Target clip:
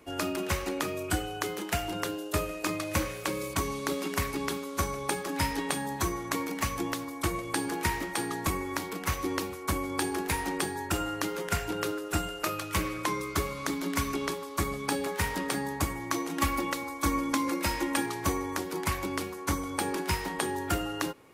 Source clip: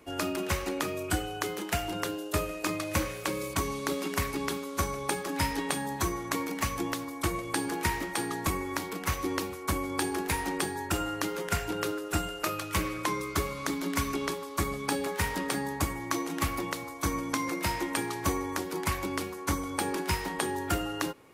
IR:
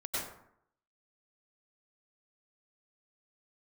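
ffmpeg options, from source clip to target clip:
-filter_complex "[0:a]asettb=1/sr,asplit=3[s0][s1][s2];[s0]atrim=end=16.384[s3];[s1]atrim=start=16.38:end=18.06,asetpts=PTS-STARTPTS,afade=t=in:d=0.004:c=qsin,afade=t=out:st=1.676:d=0.004:c=qsin,aecho=1:1:3.6:0.64,atrim=end_sample=74088[s4];[s2]atrim=start=18.056[s5];[s3][s4]acrossfade=d=0.004:c1=hsin:c2=qsin[s6];[s6][s5]acrossfade=d=0.004:c1=qsin:c2=hsin"

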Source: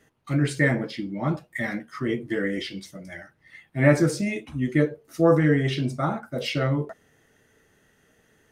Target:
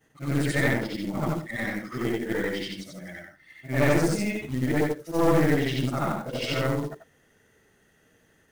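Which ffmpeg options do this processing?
-af "afftfilt=real='re':imag='-im':win_size=8192:overlap=0.75,aeval=exprs='(tanh(12.6*val(0)+0.65)-tanh(0.65))/12.6':c=same,acrusher=bits=5:mode=log:mix=0:aa=0.000001,volume=2.24"

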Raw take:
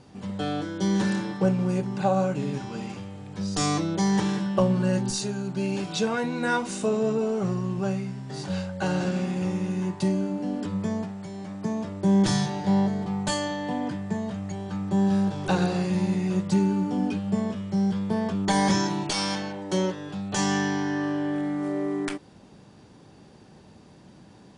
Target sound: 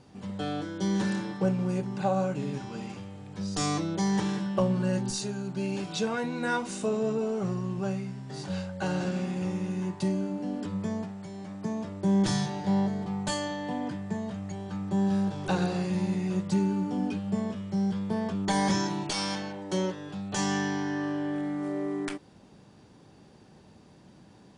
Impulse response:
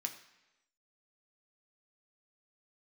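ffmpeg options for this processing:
-af "acontrast=22,volume=0.376"

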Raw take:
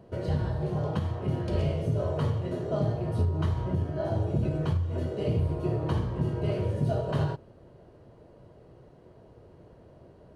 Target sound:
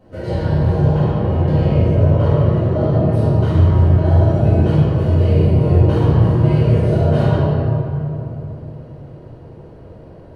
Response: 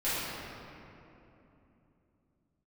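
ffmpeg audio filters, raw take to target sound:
-filter_complex "[0:a]asettb=1/sr,asplit=3[s0][s1][s2];[s0]atrim=end=0.954[s3];[s1]atrim=start=0.95:end=3.1,asetpts=PTS-STARTPTS,afade=t=in:d=0.004:c=qsin,afade=t=out:st=2.146:d=0.004:c=qsin,lowpass=f=2700:p=1[s4];[s2]atrim=start=3.096[s5];[s3][s4]acrossfade=d=0.004:c1=hsin:c2=qsin[s6];[s6][s5]acrossfade=d=0.004:c1=qsin:c2=hsin[s7];[1:a]atrim=start_sample=2205[s8];[s7][s8]afir=irnorm=-1:irlink=0,volume=1.26"

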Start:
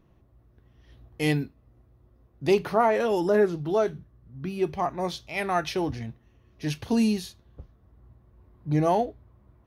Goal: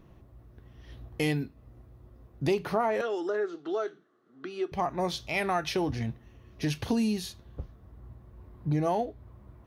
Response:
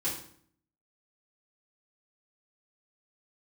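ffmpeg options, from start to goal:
-filter_complex "[0:a]acompressor=threshold=0.02:ratio=3,asettb=1/sr,asplit=3[s0][s1][s2];[s0]atrim=end=3.014[s3];[s1]atrim=start=3.01:end=4.72,asetpts=PTS-STARTPTS,afade=t=in:d=0.004:c=qsin,afade=t=out:st=1.706:d=0.004:c=qsin,highpass=f=340:w=0.5412,highpass=f=340:w=1.3066,equalizer=f=560:t=q:w=4:g=-9,equalizer=f=940:t=q:w=4:g=-10,equalizer=f=1300:t=q:w=4:g=6,equalizer=f=2400:t=q:w=4:g=-7,equalizer=f=5200:t=q:w=4:g=-7,lowpass=f=6800:w=0.5412,lowpass=f=6800:w=1.3066[s4];[s2]atrim=start=4.716[s5];[s3][s4]acrossfade=d=0.004:c1=hsin:c2=qsin[s6];[s6][s5]acrossfade=d=0.004:c1=qsin:c2=hsin,volume=2"

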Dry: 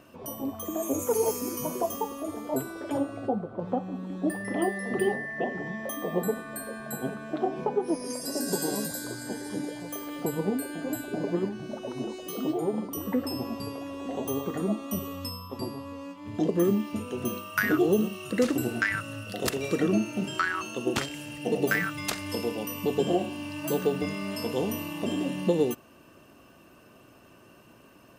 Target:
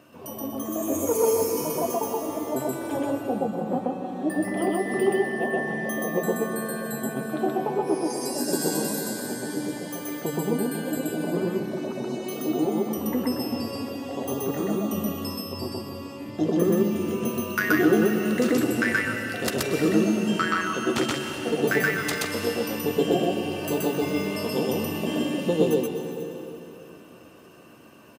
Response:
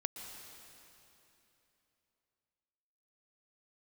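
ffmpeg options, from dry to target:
-filter_complex "[0:a]highpass=85,asplit=2[s0][s1];[s1]adelay=13,volume=0.299[s2];[s0][s2]amix=inputs=2:normalize=0,asplit=2[s3][s4];[1:a]atrim=start_sample=2205,adelay=127[s5];[s4][s5]afir=irnorm=-1:irlink=0,volume=1.19[s6];[s3][s6]amix=inputs=2:normalize=0"

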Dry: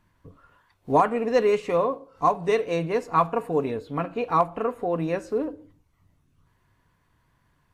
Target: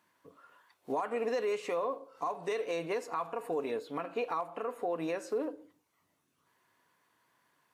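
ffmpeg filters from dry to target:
-filter_complex "[0:a]highpass=350,highshelf=f=5000:g=4.5,asplit=2[s0][s1];[s1]acompressor=threshold=0.0398:ratio=6,volume=0.794[s2];[s0][s2]amix=inputs=2:normalize=0,alimiter=limit=0.133:level=0:latency=1:release=89,volume=0.447"

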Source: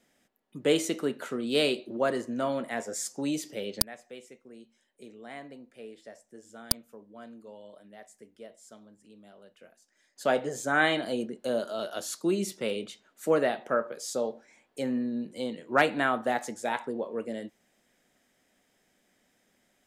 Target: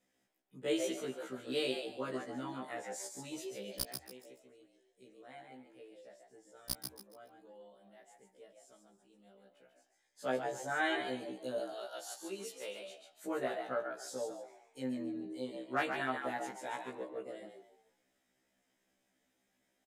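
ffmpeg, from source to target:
-filter_complex "[0:a]asettb=1/sr,asplit=3[s0][s1][s2];[s0]atrim=end=11.584[s3];[s1]atrim=start=11.58:end=12.88,asetpts=PTS-STARTPTS,afade=t=in:d=0.004:c=qsin,afade=t=out:st=1.296:d=0.004:c=qsin,highpass=460[s4];[s2]atrim=start=12.876[s5];[s3][s4]acrossfade=d=0.004:c1=hsin:c2=qsin[s6];[s6][s5]acrossfade=d=0.004:c1=qsin:c2=hsin,asplit=5[s7][s8][s9][s10][s11];[s8]adelay=140,afreqshift=77,volume=0.501[s12];[s9]adelay=280,afreqshift=154,volume=0.15[s13];[s10]adelay=420,afreqshift=231,volume=0.0452[s14];[s11]adelay=560,afreqshift=308,volume=0.0135[s15];[s7][s12][s13][s14][s15]amix=inputs=5:normalize=0,afftfilt=real='re*1.73*eq(mod(b,3),0)':imag='im*1.73*eq(mod(b,3),0)':win_size=2048:overlap=0.75,volume=0.398"

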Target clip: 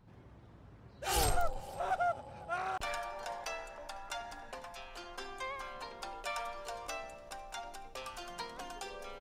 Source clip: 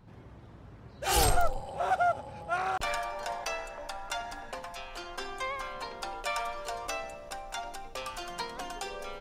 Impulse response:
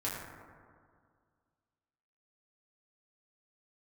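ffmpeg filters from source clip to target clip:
-af "aecho=1:1:501:0.0668,volume=0.501"

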